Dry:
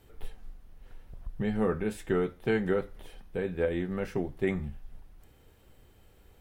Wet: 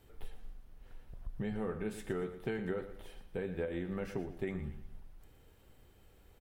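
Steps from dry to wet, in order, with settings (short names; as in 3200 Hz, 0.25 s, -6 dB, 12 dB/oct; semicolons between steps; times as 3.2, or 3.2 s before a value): compressor, threshold -30 dBFS, peak gain reduction 8 dB; feedback echo 0.116 s, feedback 36%, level -12 dB; gain -3.5 dB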